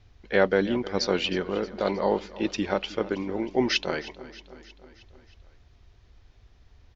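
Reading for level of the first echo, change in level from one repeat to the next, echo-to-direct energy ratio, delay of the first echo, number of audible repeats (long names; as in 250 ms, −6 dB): −17.5 dB, −4.5 dB, −15.5 dB, 314 ms, 4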